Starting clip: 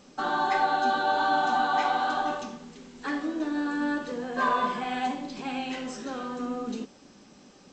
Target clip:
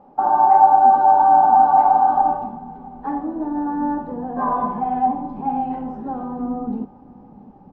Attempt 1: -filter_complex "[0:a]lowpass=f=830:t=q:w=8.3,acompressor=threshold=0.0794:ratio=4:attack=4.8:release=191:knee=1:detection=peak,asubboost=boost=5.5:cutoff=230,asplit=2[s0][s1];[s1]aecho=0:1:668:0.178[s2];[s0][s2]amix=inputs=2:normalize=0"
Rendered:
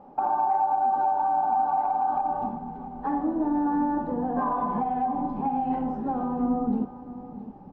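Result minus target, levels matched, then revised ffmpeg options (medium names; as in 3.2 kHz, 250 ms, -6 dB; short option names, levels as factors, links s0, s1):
compression: peak gain reduction +14.5 dB; echo-to-direct +8 dB
-filter_complex "[0:a]lowpass=f=830:t=q:w=8.3,asubboost=boost=5.5:cutoff=230,asplit=2[s0][s1];[s1]aecho=0:1:668:0.0708[s2];[s0][s2]amix=inputs=2:normalize=0"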